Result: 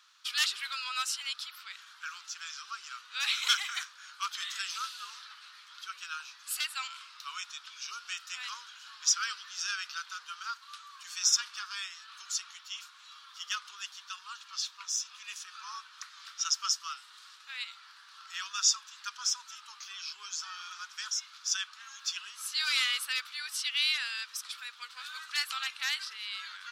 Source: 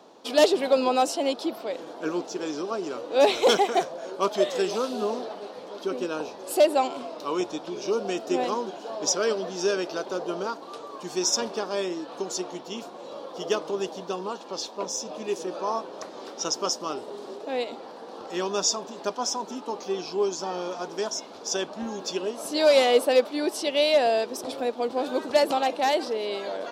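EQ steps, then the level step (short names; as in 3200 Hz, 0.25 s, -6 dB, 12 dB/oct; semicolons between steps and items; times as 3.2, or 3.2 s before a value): elliptic high-pass 1300 Hz, stop band 50 dB; 0.0 dB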